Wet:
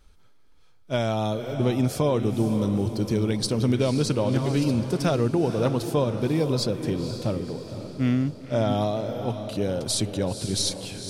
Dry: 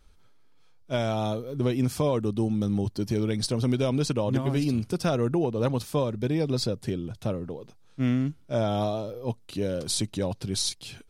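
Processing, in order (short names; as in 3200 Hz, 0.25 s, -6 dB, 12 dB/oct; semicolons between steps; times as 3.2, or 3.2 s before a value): diffused feedback echo 0.51 s, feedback 47%, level -9 dB; gain +2 dB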